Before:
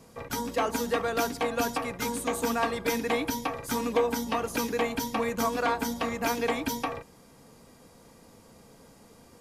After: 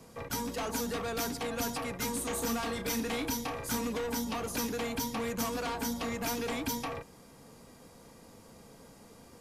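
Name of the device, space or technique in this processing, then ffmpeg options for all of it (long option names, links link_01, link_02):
one-band saturation: -filter_complex "[0:a]acrossover=split=200|3900[link_01][link_02][link_03];[link_02]asoftclip=type=tanh:threshold=-33.5dB[link_04];[link_01][link_04][link_03]amix=inputs=3:normalize=0,asettb=1/sr,asplit=3[link_05][link_06][link_07];[link_05]atrim=end=2.184[link_08];[link_06]atrim=start=2.18:end=3.78,asetpts=PTS-STARTPTS,afade=type=in:duration=0.004:curve=qsin,afade=type=out:start_time=1.596:duration=0.004:curve=qsin,asplit=2[link_09][link_10];[link_10]adelay=31,volume=-8dB[link_11];[link_09][link_11]amix=inputs=2:normalize=0,atrim=end_sample=70560[link_12];[link_07]atrim=start=3.776[link_13];[link_08][link_12]acrossfade=duration=0.004:curve1=hsin:curve2=qsin[link_14];[link_14][link_13]acrossfade=duration=0.004:curve1=qsin:curve2=hsin"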